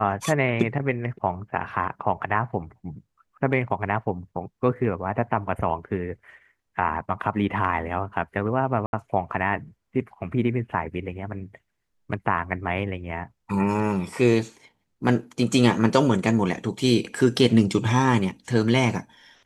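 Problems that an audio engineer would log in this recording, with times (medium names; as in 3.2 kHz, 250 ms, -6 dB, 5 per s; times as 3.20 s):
8.86–8.93 s: dropout 71 ms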